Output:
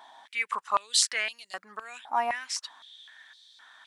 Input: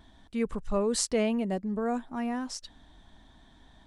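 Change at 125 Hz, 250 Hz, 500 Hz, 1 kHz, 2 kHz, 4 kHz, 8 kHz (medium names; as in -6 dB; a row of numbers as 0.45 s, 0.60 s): under -25 dB, -25.0 dB, -9.5 dB, +8.0 dB, +10.5 dB, +9.5 dB, +5.0 dB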